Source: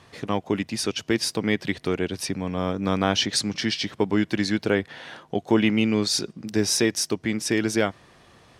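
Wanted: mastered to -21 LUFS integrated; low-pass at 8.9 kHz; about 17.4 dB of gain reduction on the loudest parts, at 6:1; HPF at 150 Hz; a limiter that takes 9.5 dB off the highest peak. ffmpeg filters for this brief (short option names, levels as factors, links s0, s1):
-af "highpass=150,lowpass=8900,acompressor=threshold=0.0158:ratio=6,volume=11.2,alimiter=limit=0.316:level=0:latency=1"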